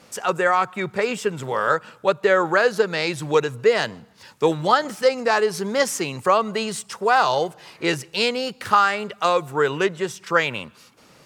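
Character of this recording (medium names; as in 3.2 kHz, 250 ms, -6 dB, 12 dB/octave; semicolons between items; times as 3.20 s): noise floor -52 dBFS; spectral tilt -3.5 dB/octave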